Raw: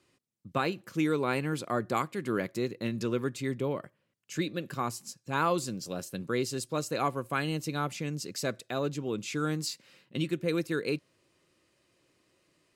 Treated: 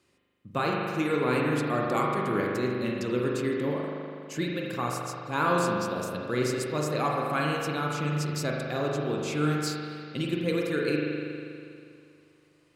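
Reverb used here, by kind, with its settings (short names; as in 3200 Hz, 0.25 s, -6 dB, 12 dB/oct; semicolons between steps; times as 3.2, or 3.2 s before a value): spring tank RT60 2.4 s, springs 40 ms, chirp 45 ms, DRR -2 dB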